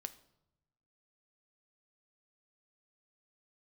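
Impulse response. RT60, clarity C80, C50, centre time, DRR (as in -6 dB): 0.90 s, 19.0 dB, 16.0 dB, 4 ms, 10.0 dB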